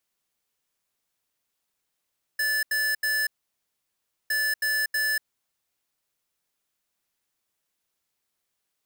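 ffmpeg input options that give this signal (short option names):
-f lavfi -i "aevalsrc='0.0562*(2*lt(mod(1740*t,1),0.5)-1)*clip(min(mod(mod(t,1.91),0.32),0.24-mod(mod(t,1.91),0.32))/0.005,0,1)*lt(mod(t,1.91),0.96)':d=3.82:s=44100"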